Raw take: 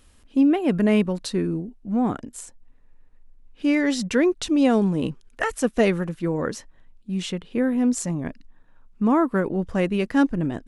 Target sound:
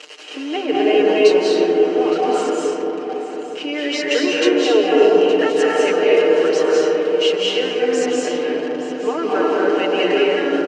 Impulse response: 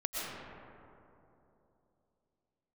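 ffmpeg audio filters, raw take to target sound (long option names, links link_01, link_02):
-filter_complex "[0:a]aeval=exprs='val(0)+0.5*0.0299*sgn(val(0))':channel_layout=same,bandreject=frequency=3500:width=9.6,aecho=1:1:6.6:0.87,alimiter=limit=-13dB:level=0:latency=1,highpass=frequency=380:width=0.5412,highpass=frequency=380:width=1.3066,equalizer=frequency=410:width_type=q:width=4:gain=8,equalizer=frequency=1000:width_type=q:width=4:gain=-4,equalizer=frequency=2900:width_type=q:width=4:gain=10,lowpass=frequency=6300:width=0.5412,lowpass=frequency=6300:width=1.3066,aecho=1:1:867:0.188[link_01];[1:a]atrim=start_sample=2205,asetrate=26019,aresample=44100[link_02];[link_01][link_02]afir=irnorm=-1:irlink=0,volume=-1.5dB"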